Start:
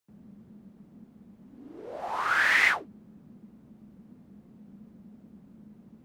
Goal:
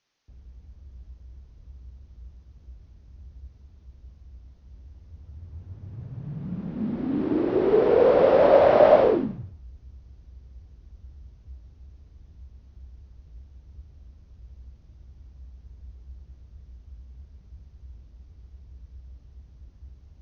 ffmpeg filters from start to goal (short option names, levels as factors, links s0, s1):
-af "asetrate=13186,aresample=44100,volume=2"